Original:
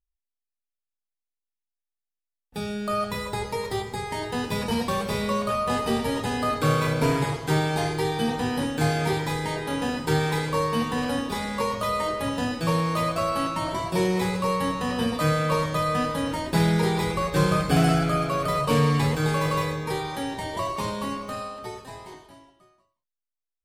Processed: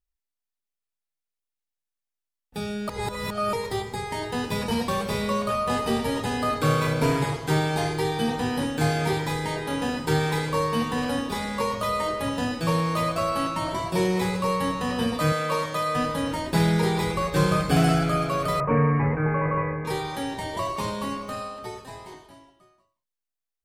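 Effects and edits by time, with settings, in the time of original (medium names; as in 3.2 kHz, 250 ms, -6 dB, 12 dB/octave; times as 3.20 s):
2.89–3.53 s: reverse
15.32–15.96 s: high-pass 360 Hz 6 dB/octave
18.60–19.85 s: steep low-pass 2.3 kHz 72 dB/octave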